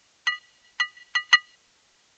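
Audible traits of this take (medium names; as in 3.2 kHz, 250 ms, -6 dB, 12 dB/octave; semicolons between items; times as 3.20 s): chopped level 3.1 Hz, depth 65%, duty 20%; a quantiser's noise floor 10-bit, dither triangular; Vorbis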